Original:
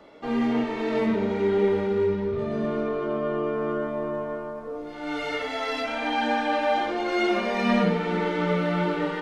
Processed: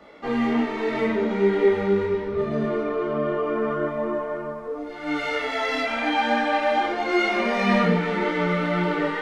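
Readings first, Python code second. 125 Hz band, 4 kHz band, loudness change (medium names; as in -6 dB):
+1.5 dB, +2.5 dB, +2.5 dB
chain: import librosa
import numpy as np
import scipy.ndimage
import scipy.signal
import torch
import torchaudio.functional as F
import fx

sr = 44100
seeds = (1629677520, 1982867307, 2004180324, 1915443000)

y = fx.graphic_eq_31(x, sr, hz=(100, 1250, 2000), db=(-6, 3, 5))
y = fx.detune_double(y, sr, cents=18)
y = y * librosa.db_to_amplitude(5.5)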